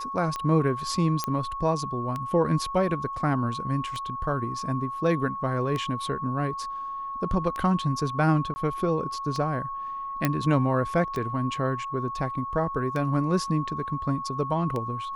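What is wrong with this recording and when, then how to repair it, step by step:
scratch tick 33 1/3 rpm −18 dBFS
whistle 1,100 Hz −31 dBFS
0:01.24: click −12 dBFS
0:08.54–0:08.56: drop-out 20 ms
0:10.25: click −8 dBFS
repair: click removal
notch filter 1,100 Hz, Q 30
repair the gap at 0:08.54, 20 ms

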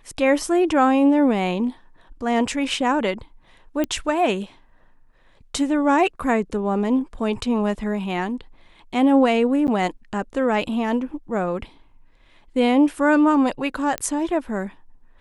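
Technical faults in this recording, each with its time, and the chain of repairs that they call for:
0:03.84: click −12 dBFS
0:09.67–0:09.68: drop-out 9.7 ms
0:13.98: click −10 dBFS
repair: click removal
repair the gap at 0:09.67, 9.7 ms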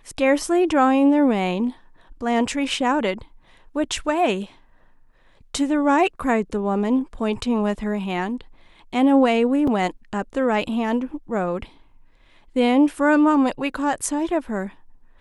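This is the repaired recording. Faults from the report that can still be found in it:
none of them is left

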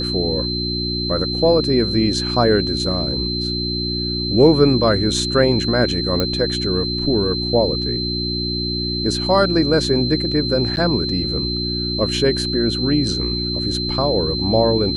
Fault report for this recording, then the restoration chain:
mains hum 60 Hz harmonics 6 −25 dBFS
whistle 4,100 Hz −23 dBFS
0:06.20: click −6 dBFS
0:10.76–0:10.77: drop-out 9.8 ms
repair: click removal
hum removal 60 Hz, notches 6
notch filter 4,100 Hz, Q 30
repair the gap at 0:10.76, 9.8 ms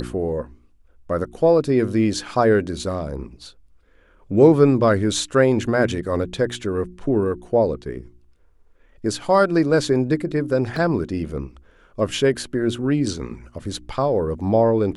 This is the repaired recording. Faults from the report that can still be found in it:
none of them is left

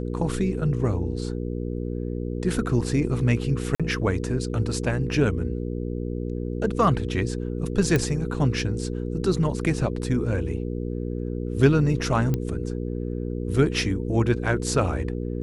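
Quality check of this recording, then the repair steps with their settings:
mains hum 60 Hz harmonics 8 −29 dBFS
0:03.75–0:03.80: drop-out 46 ms
0:07.96: click −9 dBFS
0:12.34: click −13 dBFS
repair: click removal
hum removal 60 Hz, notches 8
repair the gap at 0:03.75, 46 ms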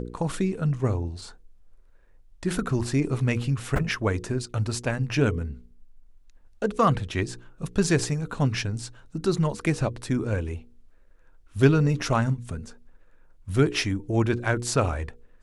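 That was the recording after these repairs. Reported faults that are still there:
none of them is left

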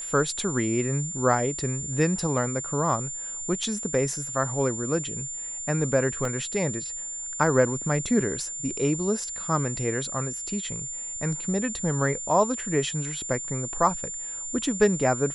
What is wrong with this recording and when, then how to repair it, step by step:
whistle 7,200 Hz −32 dBFS
0:06.25: drop-out 2.2 ms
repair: notch filter 7,200 Hz, Q 30
repair the gap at 0:06.25, 2.2 ms

